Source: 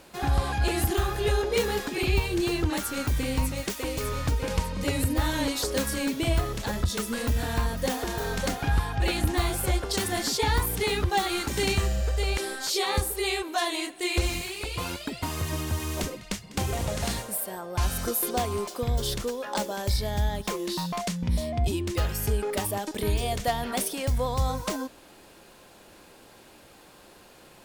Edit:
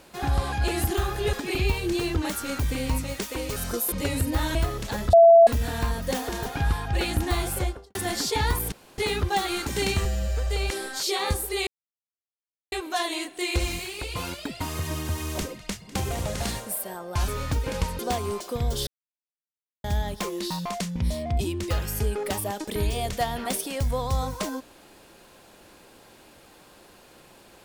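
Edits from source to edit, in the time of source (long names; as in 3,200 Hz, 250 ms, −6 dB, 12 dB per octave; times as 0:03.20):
0:01.33–0:01.81: remove
0:04.04–0:04.75: swap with 0:17.90–0:18.26
0:05.38–0:06.30: remove
0:06.88–0:07.22: beep over 671 Hz −9 dBFS
0:08.21–0:08.53: remove
0:09.61–0:10.02: fade out and dull
0:10.79: splice in room tone 0.26 s
0:11.86–0:12.14: time-stretch 1.5×
0:13.34: splice in silence 1.05 s
0:19.14–0:20.11: silence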